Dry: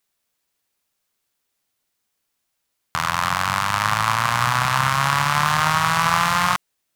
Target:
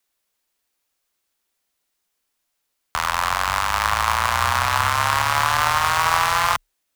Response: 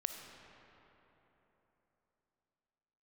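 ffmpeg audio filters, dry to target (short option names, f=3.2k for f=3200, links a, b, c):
-af "afreqshift=-35,equalizer=f=140:t=o:w=0.7:g=-10.5,acrusher=bits=4:mode=log:mix=0:aa=0.000001"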